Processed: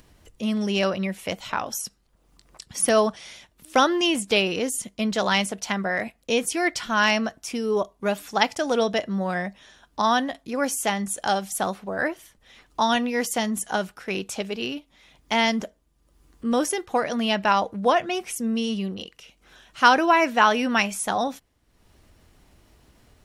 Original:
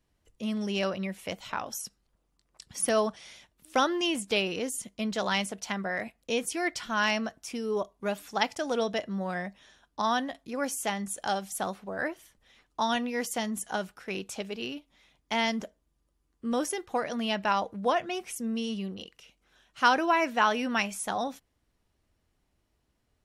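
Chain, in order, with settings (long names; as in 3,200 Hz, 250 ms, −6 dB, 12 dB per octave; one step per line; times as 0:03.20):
upward compression, threshold −50 dBFS
level +6.5 dB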